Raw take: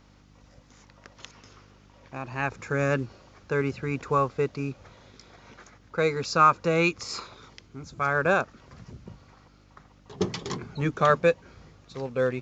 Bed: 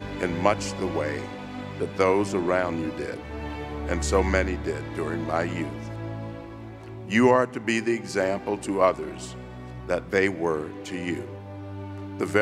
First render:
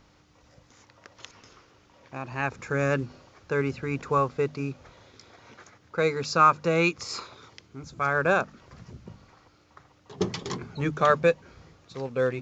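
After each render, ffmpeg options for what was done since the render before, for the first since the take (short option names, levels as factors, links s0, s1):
-af "bandreject=f=50:t=h:w=4,bandreject=f=100:t=h:w=4,bandreject=f=150:t=h:w=4,bandreject=f=200:t=h:w=4,bandreject=f=250:t=h:w=4"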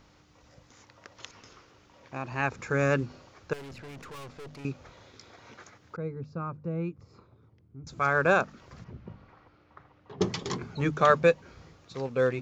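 -filter_complex "[0:a]asettb=1/sr,asplit=3[s0][s1][s2];[s0]atrim=end=3.534[s3];[s1]atrim=start=3.53:end=4.65,asetpts=PTS-STARTPTS,afade=t=in:d=0.004:c=qsin,afade=t=out:st=1.116:d=0.004:c=qsin,aeval=exprs='(tanh(126*val(0)+0.45)-tanh(0.45))/126':c=same[s4];[s2]atrim=start=4.646[s5];[s3][s4]acrossfade=d=0.004:c1=hsin:c2=qsin[s6];[s6][s5]acrossfade=d=0.004:c1=qsin:c2=hsin,asettb=1/sr,asplit=3[s7][s8][s9];[s7]atrim=end=5.964[s10];[s8]atrim=start=5.96:end=7.87,asetpts=PTS-STARTPTS,afade=t=in:d=0.004:c=qsin,afade=t=out:st=1.906:d=0.004:c=qsin,bandpass=f=100:t=q:w=0.9[s11];[s9]atrim=start=7.866[s12];[s10][s11]acrossfade=d=0.004:c1=hsin:c2=qsin[s13];[s13][s12]acrossfade=d=0.004:c1=qsin:c2=hsin,asettb=1/sr,asplit=3[s14][s15][s16];[s14]atrim=end=8.844[s17];[s15]atrim=start=8.84:end=10.21,asetpts=PTS-STARTPTS,afade=t=in:d=0.004:c=qsin,afade=t=out:st=1.366:d=0.004:c=qsin,lowpass=2500[s18];[s16]atrim=start=10.206[s19];[s17][s18]acrossfade=d=0.004:c1=hsin:c2=qsin[s20];[s20][s19]acrossfade=d=0.004:c1=qsin:c2=hsin"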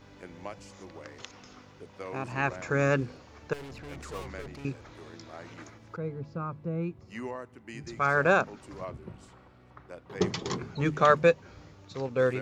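-filter_complex "[1:a]volume=0.106[s0];[0:a][s0]amix=inputs=2:normalize=0"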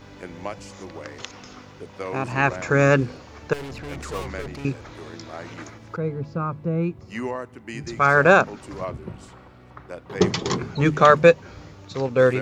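-af "volume=2.66,alimiter=limit=0.794:level=0:latency=1"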